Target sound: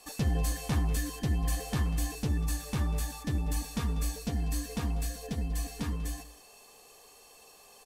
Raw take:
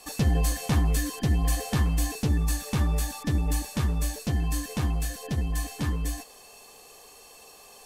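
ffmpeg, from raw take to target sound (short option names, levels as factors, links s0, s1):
-filter_complex "[0:a]asettb=1/sr,asplit=3[s0][s1][s2];[s0]atrim=end=3.564[s3];[s1]atrim=start=3.56:end=5.93,asetpts=PTS-STARTPTS,afade=t=in:d=0.004:c=qsin,afade=t=out:st=2.366:d=0.004:c=qsin,aecho=1:1:4.3:0.57,atrim=end_sample=104517[s4];[s2]atrim=start=5.926[s5];[s3][s4]acrossfade=d=0.004:c1=hsin:c2=qsin[s6];[s6][s5]acrossfade=d=0.004:c1=qsin:c2=hsin,aecho=1:1:193:0.141,volume=0.531"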